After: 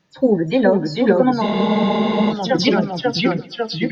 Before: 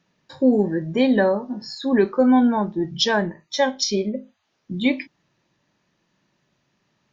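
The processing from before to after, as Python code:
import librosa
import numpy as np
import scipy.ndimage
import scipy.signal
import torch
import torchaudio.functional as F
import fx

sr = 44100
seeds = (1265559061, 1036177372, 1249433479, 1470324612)

p1 = fx.spec_delay(x, sr, highs='early', ms=101)
p2 = fx.echo_feedback(p1, sr, ms=188, feedback_pct=56, wet_db=-23.0)
p3 = fx.stretch_vocoder(p2, sr, factor=0.55)
p4 = fx.echo_pitch(p3, sr, ms=417, semitones=-1, count=3, db_per_echo=-3.0)
p5 = fx.rider(p4, sr, range_db=4, speed_s=0.5)
p6 = p4 + F.gain(torch.from_numpy(p5), 2.0).numpy()
p7 = fx.spec_freeze(p6, sr, seeds[0], at_s=1.43, hold_s=0.87)
y = F.gain(torch.from_numpy(p7), -2.5).numpy()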